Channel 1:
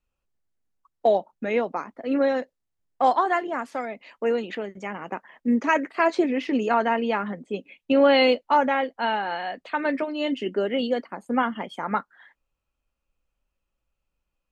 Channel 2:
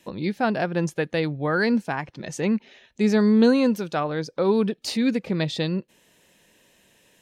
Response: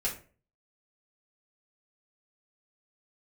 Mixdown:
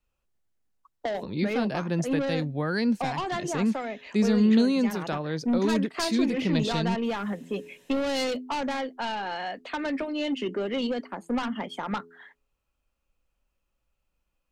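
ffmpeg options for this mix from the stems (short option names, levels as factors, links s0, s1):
-filter_complex "[0:a]bandreject=f=84.29:t=h:w=4,bandreject=f=168.58:t=h:w=4,bandreject=f=252.87:t=h:w=4,bandreject=f=337.16:t=h:w=4,bandreject=f=421.45:t=h:w=4,asoftclip=type=tanh:threshold=0.0891,volume=1.26[s0];[1:a]adelay=1150,volume=0.891[s1];[s0][s1]amix=inputs=2:normalize=0,acrossover=split=280|3000[s2][s3][s4];[s3]acompressor=threshold=0.0282:ratio=3[s5];[s2][s5][s4]amix=inputs=3:normalize=0"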